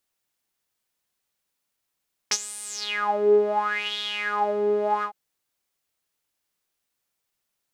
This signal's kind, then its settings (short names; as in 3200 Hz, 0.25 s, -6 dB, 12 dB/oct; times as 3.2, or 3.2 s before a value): synth patch with filter wobble G#4, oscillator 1 saw, sub -5.5 dB, filter bandpass, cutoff 470 Hz, Q 7.8, filter envelope 3.5 oct, filter decay 0.85 s, attack 12 ms, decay 0.05 s, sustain -14 dB, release 0.09 s, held 2.72 s, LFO 0.74 Hz, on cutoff 1.5 oct